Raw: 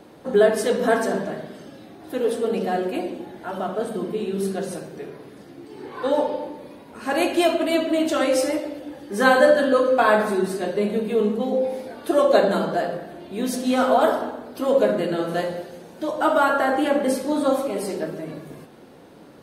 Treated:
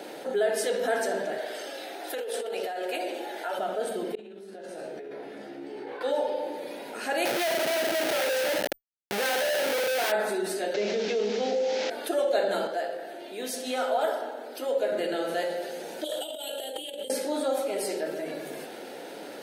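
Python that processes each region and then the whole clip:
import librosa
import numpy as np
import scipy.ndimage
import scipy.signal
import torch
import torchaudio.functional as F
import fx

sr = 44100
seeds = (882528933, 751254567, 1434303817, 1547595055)

y = fx.chain(x, sr, fx.highpass(hz=460.0, slope=12),
    fx.over_compress(threshold_db=-31.0, ratio=-1.0), at=(1.38, 3.59))
y = fx.chain(y, sr, fx.lowpass(hz=1700.0, slope=6),
    fx.comb_fb(f0_hz=70.0, decay_s=0.45, harmonics='all', damping=0.0, mix_pct=80),
    fx.over_compress(threshold_db=-45.0, ratio=-1.0), at=(4.15, 6.01))
y = fx.chain(y, sr, fx.peak_eq(hz=300.0, db=-13.5, octaves=0.37),
    fx.schmitt(flips_db=-28.5),
    fx.resample_bad(factor=3, down='filtered', up='hold'), at=(7.25, 10.12))
y = fx.chain(y, sr, fx.delta_mod(bps=32000, step_db=-30.5),
    fx.env_flatten(amount_pct=50), at=(10.74, 11.9))
y = fx.chain(y, sr, fx.highpass(hz=240.0, slope=12),
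    fx.upward_expand(threshold_db=-31.0, expansion=1.5), at=(12.67, 14.92))
y = fx.chain(y, sr, fx.curve_eq(hz=(110.0, 180.0, 290.0, 460.0, 690.0, 1200.0, 2200.0, 3200.0, 5400.0, 8100.0), db=(0, -10, -11, -5, -11, -30, -16, 10, -11, 7)),
    fx.over_compress(threshold_db=-36.0, ratio=-0.5),
    fx.transformer_sat(knee_hz=630.0), at=(16.04, 17.1))
y = scipy.signal.sosfilt(scipy.signal.butter(2, 470.0, 'highpass', fs=sr, output='sos'), y)
y = fx.peak_eq(y, sr, hz=1100.0, db=-15.0, octaves=0.3)
y = fx.env_flatten(y, sr, amount_pct=50)
y = y * librosa.db_to_amplitude(-7.5)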